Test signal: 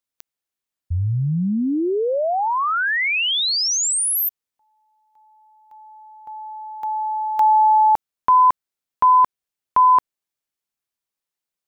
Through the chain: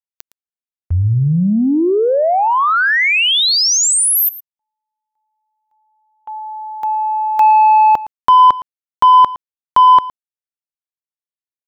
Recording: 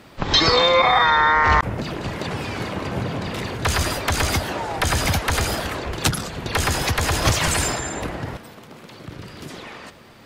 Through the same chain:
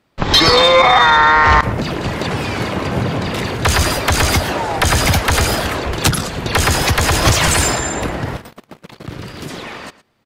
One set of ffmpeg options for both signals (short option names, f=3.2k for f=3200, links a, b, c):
-filter_complex "[0:a]agate=range=-24dB:threshold=-41dB:ratio=16:release=37:detection=rms,acontrast=89,asplit=2[a][b];[b]aecho=0:1:113:0.133[c];[a][c]amix=inputs=2:normalize=0"